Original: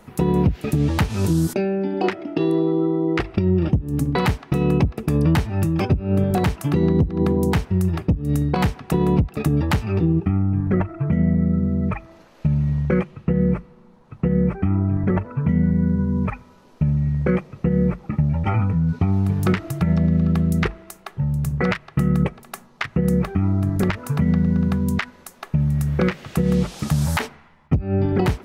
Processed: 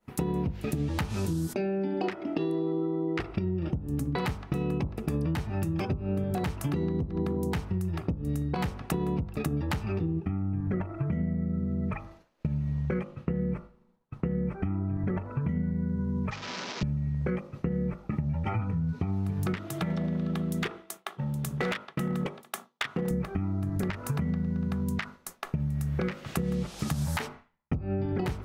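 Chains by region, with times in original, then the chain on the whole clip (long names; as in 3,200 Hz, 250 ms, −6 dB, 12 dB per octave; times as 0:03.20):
0:16.31–0:16.83: linear delta modulator 32 kbit/s, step −29.5 dBFS + high-pass filter 140 Hz 24 dB per octave + tilt shelving filter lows −4 dB, about 1,100 Hz
0:19.56–0:23.11: high-pass filter 220 Hz + parametric band 3,400 Hz +7.5 dB 0.3 octaves + hard clipping −18.5 dBFS
whole clip: hum removal 50.23 Hz, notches 29; downward compressor, threshold −27 dBFS; downward expander −37 dBFS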